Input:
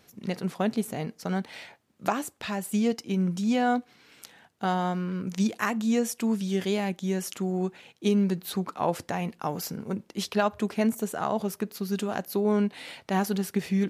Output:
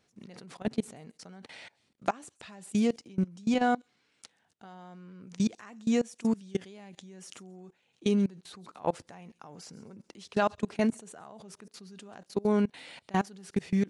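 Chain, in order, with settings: on a send: thin delay 0.134 s, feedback 33%, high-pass 4700 Hz, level -13.5 dB; on the sum: downsampling 22050 Hz; level quantiser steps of 24 dB

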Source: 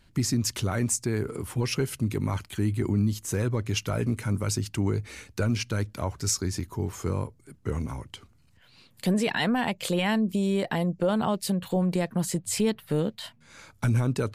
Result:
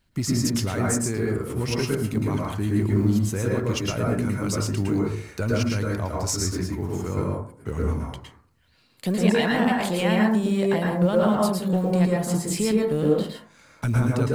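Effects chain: G.711 law mismatch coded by A; plate-style reverb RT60 0.51 s, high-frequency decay 0.3×, pre-delay 0.1 s, DRR -3 dB

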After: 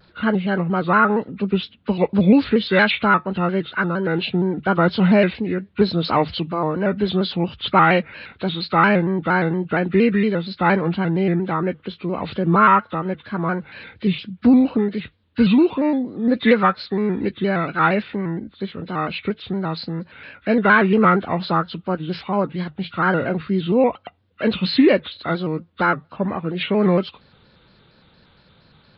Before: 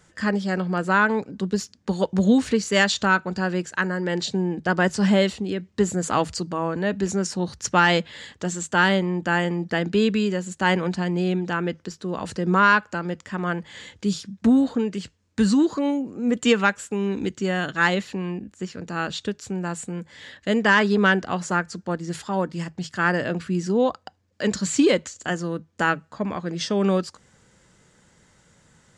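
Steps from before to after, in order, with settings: nonlinear frequency compression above 1100 Hz 1.5:1; downsampling 11025 Hz; shaped vibrato square 4.3 Hz, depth 100 cents; gain +4 dB

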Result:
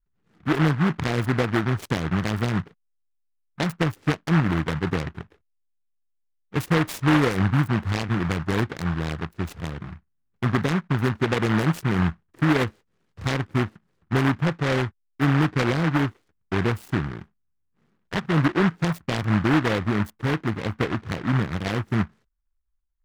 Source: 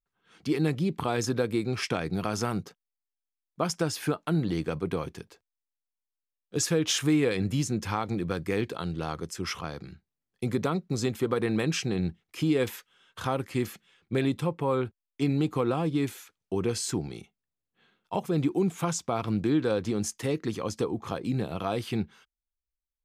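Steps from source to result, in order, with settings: Wiener smoothing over 41 samples; tilt -3 dB/oct; noise-modulated delay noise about 1200 Hz, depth 0.25 ms

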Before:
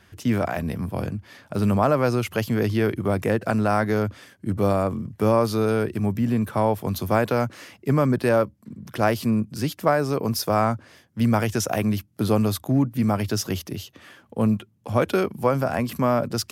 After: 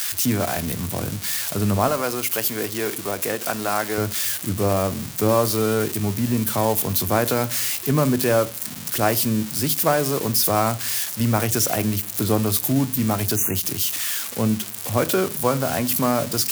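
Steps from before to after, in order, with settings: switching spikes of -15.5 dBFS; 1.88–3.98 HPF 500 Hz 6 dB/oct; 13.36–13.56 spectral delete 2900–5900 Hz; reverb RT60 0.35 s, pre-delay 3 ms, DRR 12.5 dB; ending taper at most 310 dB/s

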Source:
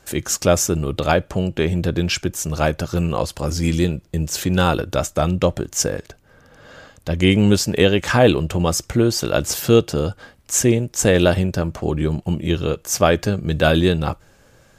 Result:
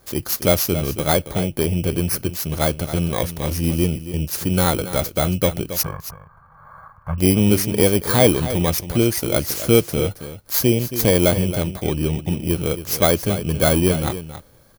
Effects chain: FFT order left unsorted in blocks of 16 samples; 5.83–7.18 EQ curve 160 Hz 0 dB, 290 Hz -22 dB, 490 Hz -14 dB, 1100 Hz +14 dB, 3600 Hz -27 dB; echo 0.274 s -12 dB; gain -1 dB

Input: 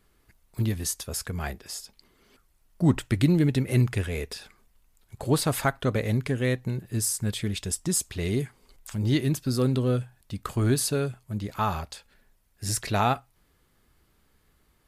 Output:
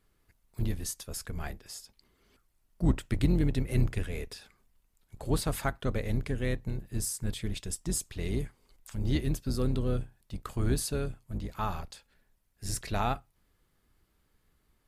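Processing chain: octaver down 2 oct, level +1 dB; gain -7 dB

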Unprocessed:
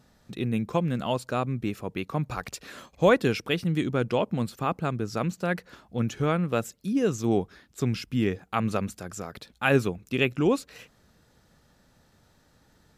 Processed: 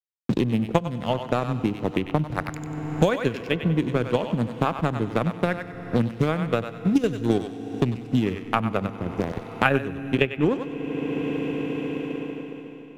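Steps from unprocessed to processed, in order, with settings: Wiener smoothing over 41 samples; in parallel at 0 dB: level quantiser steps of 23 dB; on the sum: backlash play -40 dBFS; on a send: thinning echo 95 ms, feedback 21%, high-pass 790 Hz, level -5 dB; on the sum: FDN reverb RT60 3.3 s, high-frequency decay 1×, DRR 14 dB; transient shaper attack +7 dB, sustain 0 dB; three-band squash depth 100%; gain -1.5 dB

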